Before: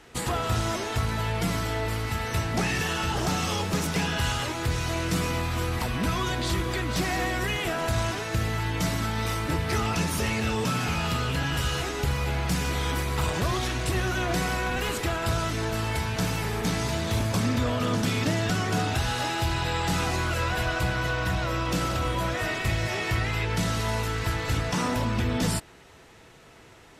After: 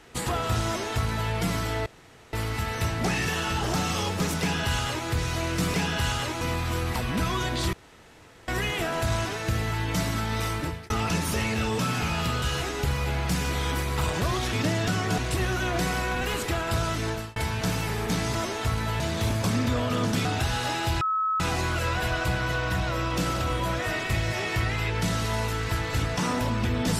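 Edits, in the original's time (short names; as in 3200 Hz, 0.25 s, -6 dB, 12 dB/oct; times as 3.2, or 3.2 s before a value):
0.66–1.31 copy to 16.9
1.86 insert room tone 0.47 s
3.94–4.61 copy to 5.27
6.59–7.34 room tone
9.41–9.76 fade out
11.28–11.62 cut
15.64–15.91 fade out
18.15–18.8 move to 13.73
19.56–19.95 bleep 1290 Hz -22.5 dBFS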